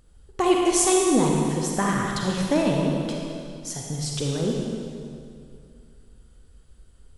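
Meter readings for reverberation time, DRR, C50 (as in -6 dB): 2.4 s, -1.5 dB, -0.5 dB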